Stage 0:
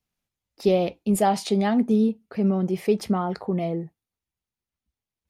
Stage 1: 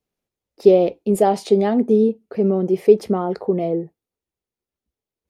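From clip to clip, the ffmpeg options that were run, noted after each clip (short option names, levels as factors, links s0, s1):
-af "equalizer=f=430:t=o:w=1.3:g=13,volume=0.75"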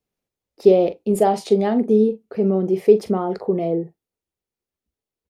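-filter_complex "[0:a]asplit=2[s0][s1];[s1]adelay=42,volume=0.237[s2];[s0][s2]amix=inputs=2:normalize=0,volume=0.891"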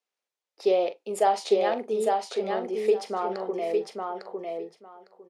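-filter_complex "[0:a]highpass=740,lowpass=8000,asplit=2[s0][s1];[s1]aecho=0:1:854|1708|2562:0.668|0.114|0.0193[s2];[s0][s2]amix=inputs=2:normalize=0"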